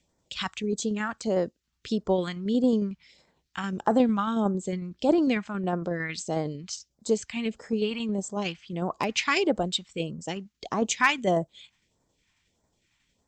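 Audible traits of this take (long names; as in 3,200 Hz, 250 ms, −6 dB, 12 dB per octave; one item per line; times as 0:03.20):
phaser sweep stages 2, 1.6 Hz, lowest notch 450–2,600 Hz
tremolo saw down 11 Hz, depth 35%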